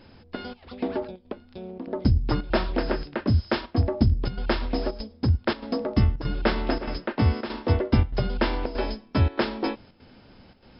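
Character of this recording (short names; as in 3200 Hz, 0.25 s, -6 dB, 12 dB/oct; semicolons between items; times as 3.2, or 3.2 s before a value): chopped level 1.6 Hz, depth 65%, duty 85%; MP3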